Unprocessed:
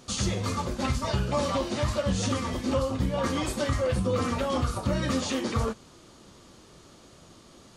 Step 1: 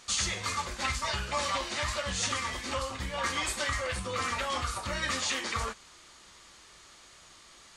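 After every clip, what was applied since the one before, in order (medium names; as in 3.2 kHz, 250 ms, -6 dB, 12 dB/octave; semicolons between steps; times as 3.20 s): graphic EQ 125/250/500/1000/2000/4000/8000 Hz -9/-8/-4/+3/+10/+4/+8 dB; trim -5 dB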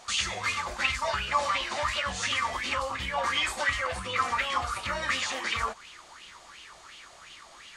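compression 1.5:1, threshold -38 dBFS, peak gain reduction 4.5 dB; sweeping bell 2.8 Hz 680–3000 Hz +16 dB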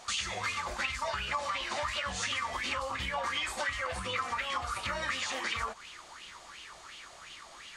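compression 4:1, threshold -31 dBFS, peak gain reduction 9.5 dB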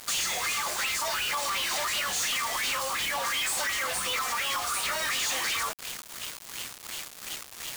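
saturation -30.5 dBFS, distortion -14 dB; RIAA curve recording; companded quantiser 2-bit; trim -2.5 dB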